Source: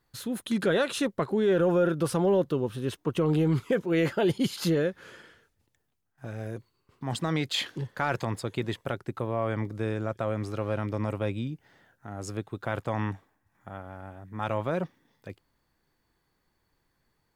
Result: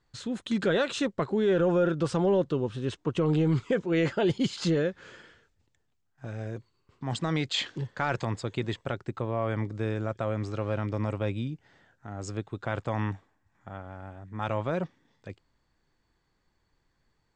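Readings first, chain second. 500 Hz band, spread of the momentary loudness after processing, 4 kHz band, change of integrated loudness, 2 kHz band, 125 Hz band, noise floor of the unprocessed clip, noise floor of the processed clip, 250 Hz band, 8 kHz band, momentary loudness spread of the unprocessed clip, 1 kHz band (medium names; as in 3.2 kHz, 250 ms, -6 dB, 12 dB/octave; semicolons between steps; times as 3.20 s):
-1.0 dB, 17 LU, 0.0 dB, -0.5 dB, -0.5 dB, +0.5 dB, -75 dBFS, -74 dBFS, -0.5 dB, -3.0 dB, 17 LU, -1.0 dB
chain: elliptic low-pass 7.8 kHz, stop band 60 dB; bass shelf 77 Hz +6 dB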